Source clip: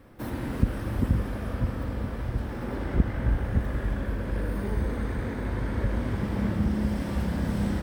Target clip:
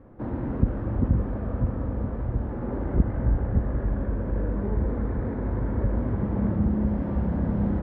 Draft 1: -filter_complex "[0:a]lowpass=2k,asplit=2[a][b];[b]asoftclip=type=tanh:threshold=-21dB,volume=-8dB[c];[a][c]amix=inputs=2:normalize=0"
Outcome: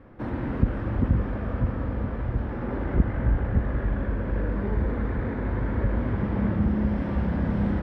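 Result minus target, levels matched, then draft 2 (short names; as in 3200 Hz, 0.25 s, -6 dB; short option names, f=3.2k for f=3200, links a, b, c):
2000 Hz band +7.5 dB
-filter_complex "[0:a]lowpass=990,asplit=2[a][b];[b]asoftclip=type=tanh:threshold=-21dB,volume=-8dB[c];[a][c]amix=inputs=2:normalize=0"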